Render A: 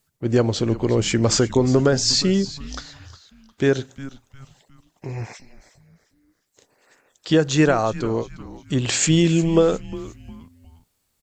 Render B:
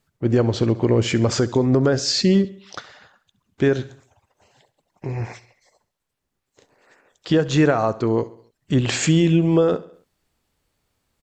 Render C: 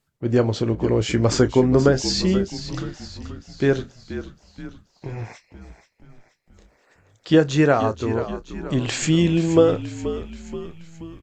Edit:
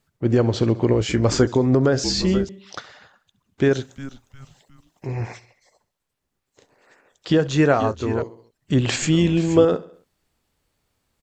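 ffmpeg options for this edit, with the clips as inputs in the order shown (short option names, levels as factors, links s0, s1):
-filter_complex "[2:a]asplit=4[s0][s1][s2][s3];[1:a]asplit=6[s4][s5][s6][s7][s8][s9];[s4]atrim=end=0.932[s10];[s0]atrim=start=0.928:end=1.472[s11];[s5]atrim=start=1.468:end=2.042[s12];[s1]atrim=start=2.038:end=2.492[s13];[s6]atrim=start=2.488:end=3.712[s14];[0:a]atrim=start=3.708:end=5.072[s15];[s7]atrim=start=5.068:end=7.472[s16];[s2]atrim=start=7.468:end=8.222[s17];[s8]atrim=start=8.218:end=8.962[s18];[s3]atrim=start=8.958:end=9.652[s19];[s9]atrim=start=9.648[s20];[s10][s11]acrossfade=d=0.004:c1=hsin:c2=hsin[s21];[s21][s12]acrossfade=d=0.004:c1=hsin:c2=hsin[s22];[s22][s13]acrossfade=d=0.004:c1=hsin:c2=hsin[s23];[s23][s14]acrossfade=d=0.004:c1=hsin:c2=hsin[s24];[s24][s15]acrossfade=d=0.004:c1=hsin:c2=hsin[s25];[s25][s16]acrossfade=d=0.004:c1=hsin:c2=hsin[s26];[s26][s17]acrossfade=d=0.004:c1=hsin:c2=hsin[s27];[s27][s18]acrossfade=d=0.004:c1=hsin:c2=hsin[s28];[s28][s19]acrossfade=d=0.004:c1=hsin:c2=hsin[s29];[s29][s20]acrossfade=d=0.004:c1=hsin:c2=hsin"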